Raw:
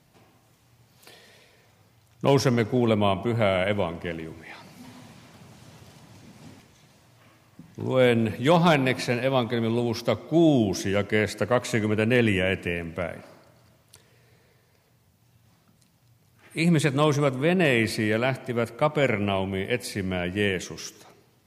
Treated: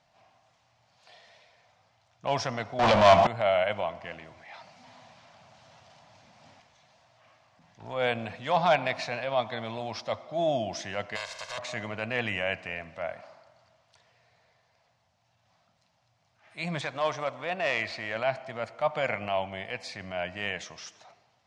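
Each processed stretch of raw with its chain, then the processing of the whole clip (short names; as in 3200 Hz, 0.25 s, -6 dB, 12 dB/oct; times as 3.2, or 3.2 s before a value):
2.79–3.27 sample leveller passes 5 + three-band squash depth 40%
11.15–11.57 spectral contrast lowered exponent 0.22 + comb 1.9 ms, depth 83% + compressor 5:1, threshold -28 dBFS
16.81–18.16 median filter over 5 samples + bell 160 Hz -7.5 dB 1.4 oct + hard clip -12.5 dBFS
whole clip: LPF 6200 Hz 24 dB/oct; resonant low shelf 510 Hz -8.5 dB, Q 3; transient shaper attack -6 dB, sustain 0 dB; gain -3.5 dB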